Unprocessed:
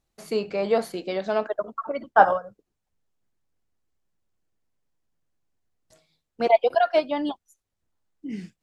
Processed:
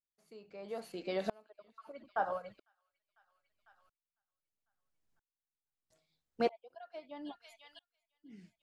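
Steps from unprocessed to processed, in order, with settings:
downward compressor 1.5 to 1, threshold −29 dBFS, peak gain reduction 7.5 dB
delay with a high-pass on its return 500 ms, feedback 42%, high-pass 2,200 Hz, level −9 dB
tremolo with a ramp in dB swelling 0.77 Hz, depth 32 dB
level −2 dB

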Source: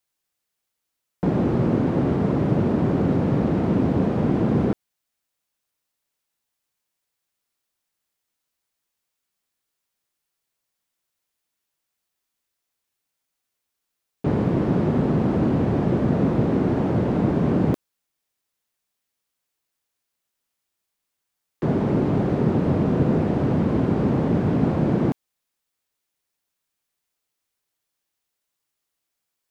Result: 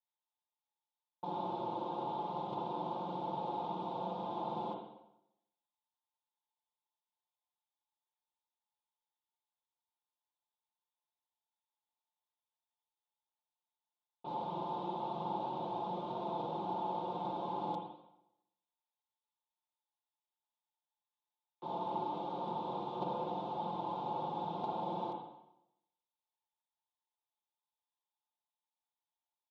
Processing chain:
noise gate −15 dBFS, range −15 dB
pair of resonant band-passes 1,800 Hz, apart 2 octaves
comb filter 5.7 ms, depth 71%
convolution reverb RT60 0.85 s, pre-delay 43 ms, DRR −0.5 dB
low-pass that shuts in the quiet parts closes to 2,300 Hz
level +11 dB

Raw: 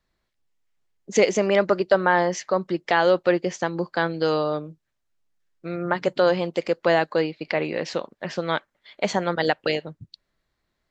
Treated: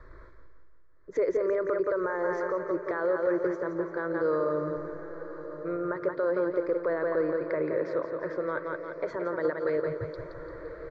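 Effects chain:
reversed playback
upward compression, threshold −22 dBFS
reversed playback
low-pass filter 1,500 Hz 12 dB per octave
on a send: repeating echo 172 ms, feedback 50%, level −8 dB
on the sum: brickwall limiter −16.5 dBFS, peak gain reduction 11.5 dB
phaser with its sweep stopped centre 770 Hz, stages 6
feedback delay with all-pass diffusion 1,090 ms, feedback 49%, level −13 dB

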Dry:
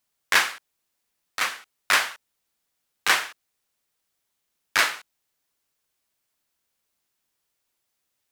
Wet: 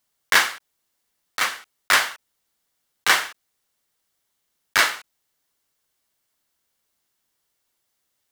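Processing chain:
one scale factor per block 5 bits
notch filter 2,500 Hz, Q 14
level +3 dB

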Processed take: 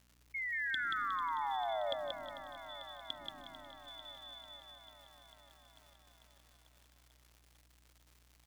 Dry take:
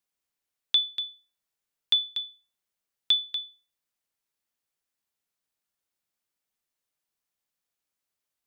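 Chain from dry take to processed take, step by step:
rippled gain that drifts along the octave scale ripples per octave 0.87, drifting −0.88 Hz, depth 11 dB
low shelf with overshoot 380 Hz +10.5 dB, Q 3
four-comb reverb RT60 1.8 s, combs from 27 ms, DRR 0.5 dB
reversed playback
downward compressor, threshold −27 dBFS, peak gain reduction 14 dB
reversed playback
treble cut that deepens with the level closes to 380 Hz, closed at −30.5 dBFS
sound drawn into the spectrogram fall, 0:00.34–0:01.94, 550–2,200 Hz −35 dBFS
mains hum 60 Hz, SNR 25 dB
on a send: repeating echo 181 ms, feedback 34%, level −3 dB
on the sum: surface crackle 260 per second −48 dBFS
feedback echo at a low word length 445 ms, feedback 80%, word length 10 bits, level −14 dB
level −3.5 dB

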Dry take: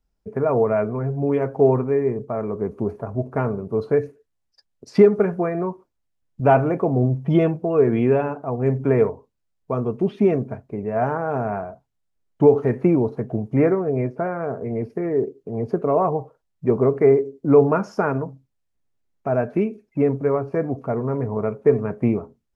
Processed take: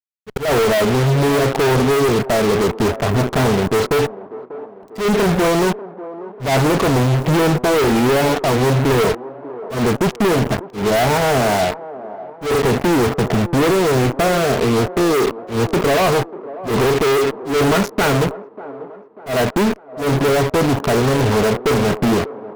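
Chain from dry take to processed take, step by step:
fuzz pedal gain 42 dB, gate −35 dBFS
volume swells 143 ms
floating-point word with a short mantissa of 2 bits
on a send: delay with a band-pass on its return 592 ms, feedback 48%, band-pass 550 Hz, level −14 dB

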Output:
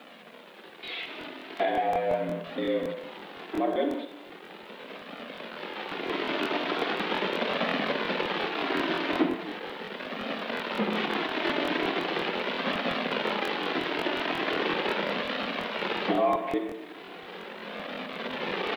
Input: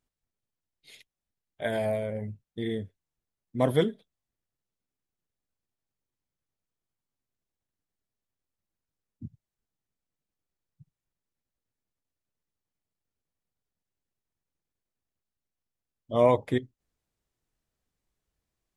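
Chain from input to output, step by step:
converter with a step at zero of −34 dBFS
camcorder AGC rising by 8.6 dB per second
in parallel at +1 dB: brickwall limiter −17.5 dBFS, peak gain reduction 8.5 dB
on the sum: flanger 0.39 Hz, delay 1.6 ms, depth 2 ms, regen −27%
far-end echo of a speakerphone 180 ms, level −13 dB
on a send at −5 dB: convolution reverb RT60 0.80 s, pre-delay 40 ms
on the sum: single-sideband voice off tune +68 Hz 150–3,500 Hz
bit-depth reduction 10 bits, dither none
regular buffer underruns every 0.18 s, samples 1,024, repeat, from 0:00.65
level −5.5 dB

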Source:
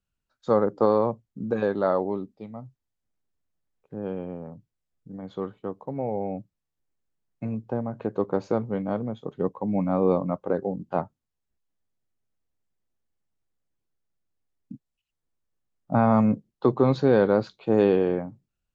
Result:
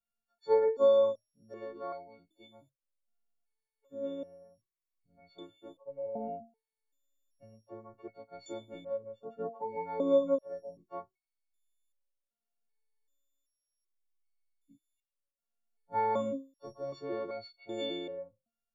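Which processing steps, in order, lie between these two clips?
every partial snapped to a pitch grid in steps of 4 semitones
parametric band 570 Hz +9.5 dB 0.35 octaves
step-sequenced resonator 2.6 Hz 230–730 Hz
level +3.5 dB

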